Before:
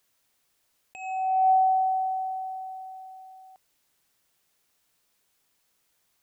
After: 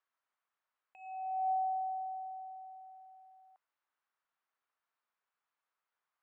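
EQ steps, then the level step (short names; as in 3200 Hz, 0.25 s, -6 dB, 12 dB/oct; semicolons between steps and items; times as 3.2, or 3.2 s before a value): band-pass 1200 Hz, Q 1.8; air absorption 88 m; -6.0 dB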